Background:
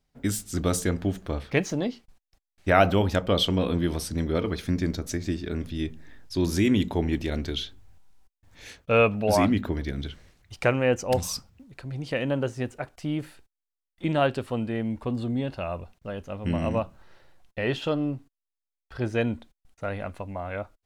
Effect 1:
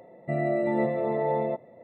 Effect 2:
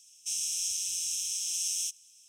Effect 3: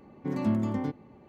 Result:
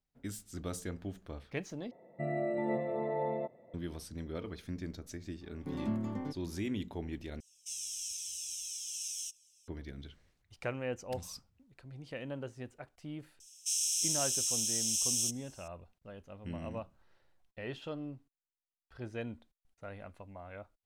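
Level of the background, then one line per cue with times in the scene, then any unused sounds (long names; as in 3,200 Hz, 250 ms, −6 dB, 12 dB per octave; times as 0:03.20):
background −14.5 dB
0:01.91: overwrite with 1 −8 dB
0:05.41: mix in 3 −8 dB
0:07.40: overwrite with 2 −4 dB + flanger whose copies keep moving one way falling 1.1 Hz
0:13.40: mix in 2 −8 dB + high-shelf EQ 2,100 Hz +9 dB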